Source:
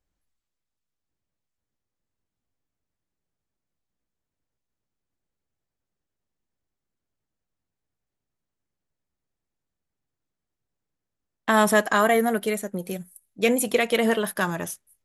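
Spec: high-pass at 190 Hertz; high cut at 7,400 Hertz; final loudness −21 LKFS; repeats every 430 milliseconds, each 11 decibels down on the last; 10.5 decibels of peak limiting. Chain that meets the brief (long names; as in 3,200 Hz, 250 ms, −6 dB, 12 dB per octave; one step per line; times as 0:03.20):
high-pass filter 190 Hz
low-pass filter 7,400 Hz
brickwall limiter −15 dBFS
repeating echo 430 ms, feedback 28%, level −11 dB
level +6 dB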